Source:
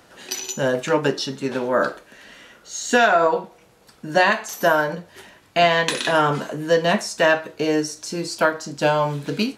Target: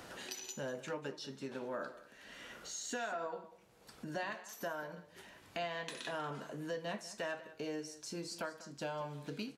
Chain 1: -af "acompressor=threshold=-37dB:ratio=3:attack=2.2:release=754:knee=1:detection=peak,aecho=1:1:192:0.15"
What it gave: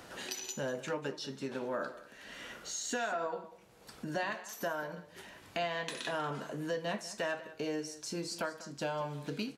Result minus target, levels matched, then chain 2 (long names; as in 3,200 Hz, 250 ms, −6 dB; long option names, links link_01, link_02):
downward compressor: peak gain reduction −4.5 dB
-af "acompressor=threshold=-44dB:ratio=3:attack=2.2:release=754:knee=1:detection=peak,aecho=1:1:192:0.15"